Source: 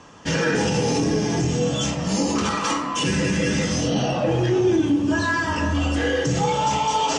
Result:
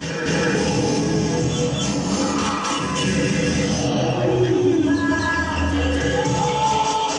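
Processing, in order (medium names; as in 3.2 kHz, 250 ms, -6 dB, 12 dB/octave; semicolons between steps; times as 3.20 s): reverse echo 245 ms -4 dB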